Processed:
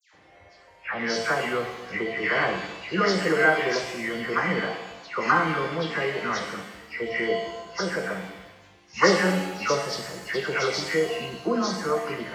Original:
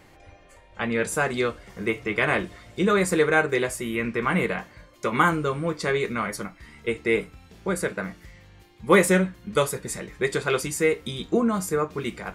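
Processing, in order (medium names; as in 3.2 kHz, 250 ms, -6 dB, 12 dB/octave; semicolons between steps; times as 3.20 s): knee-point frequency compression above 1.7 kHz 1.5:1; high-pass 77 Hz; bass shelf 440 Hz -7 dB; phase dispersion lows, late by 139 ms, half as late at 1.9 kHz; pitch-shifted reverb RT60 1 s, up +7 st, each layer -8 dB, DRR 3.5 dB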